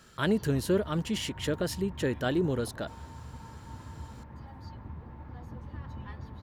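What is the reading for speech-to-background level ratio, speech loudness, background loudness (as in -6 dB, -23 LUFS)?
14.5 dB, -30.5 LUFS, -45.0 LUFS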